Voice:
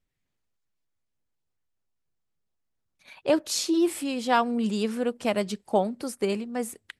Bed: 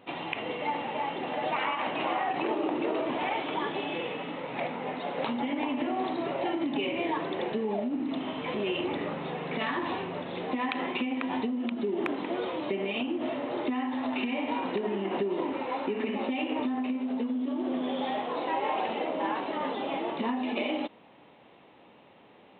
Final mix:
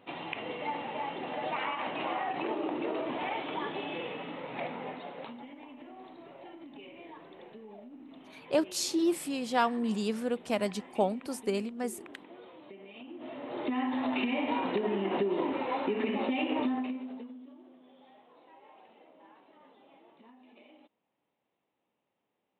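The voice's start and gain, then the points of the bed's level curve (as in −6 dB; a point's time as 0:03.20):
5.25 s, −4.5 dB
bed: 0:04.81 −4 dB
0:05.58 −18.5 dB
0:12.91 −18.5 dB
0:13.81 0 dB
0:16.71 0 dB
0:17.77 −27 dB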